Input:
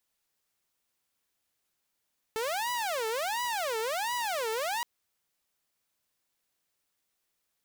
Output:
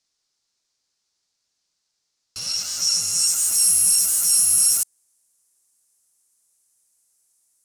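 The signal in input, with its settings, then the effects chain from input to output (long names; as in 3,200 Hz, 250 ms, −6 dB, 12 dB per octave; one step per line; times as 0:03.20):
siren wail 439–982 Hz 1.4 per second saw −27 dBFS 2.47 s
samples in bit-reversed order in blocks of 128 samples
high shelf with overshoot 4,700 Hz +11.5 dB, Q 1.5
low-pass filter sweep 4,400 Hz → 10,000 Hz, 0:02.49–0:03.61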